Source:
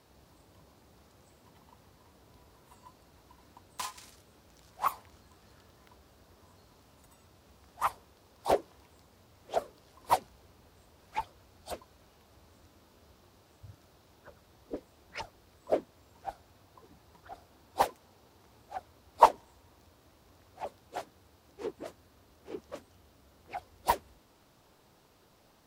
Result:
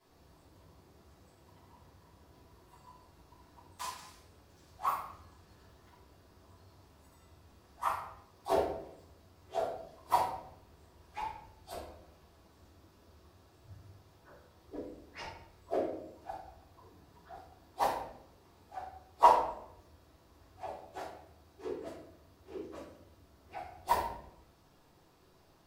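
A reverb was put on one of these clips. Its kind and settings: simulated room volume 170 m³, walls mixed, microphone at 3.7 m; trim -14.5 dB

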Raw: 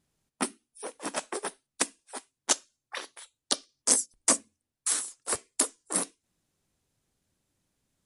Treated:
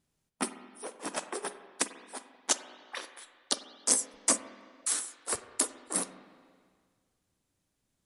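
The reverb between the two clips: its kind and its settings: spring tank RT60 1.8 s, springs 44/48/53 ms, chirp 50 ms, DRR 10.5 dB; trim -2.5 dB

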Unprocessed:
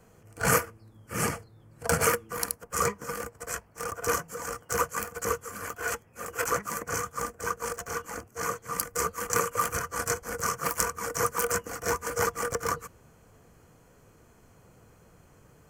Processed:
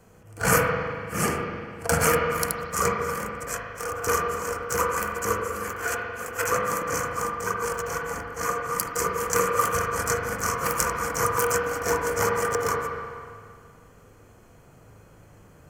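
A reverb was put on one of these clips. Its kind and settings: spring tank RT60 2 s, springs 38/48 ms, chirp 40 ms, DRR 0 dB; trim +2 dB

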